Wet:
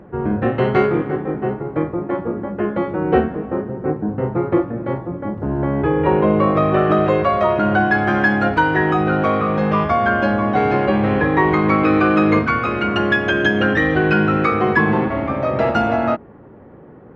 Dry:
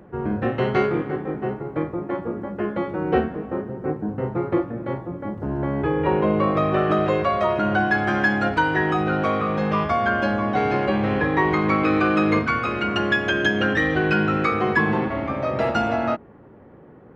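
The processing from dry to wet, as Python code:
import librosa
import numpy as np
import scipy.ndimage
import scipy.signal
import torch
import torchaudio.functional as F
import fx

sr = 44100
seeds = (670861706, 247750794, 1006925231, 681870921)

y = fx.high_shelf(x, sr, hz=4000.0, db=-10.0)
y = F.gain(torch.from_numpy(y), 5.0).numpy()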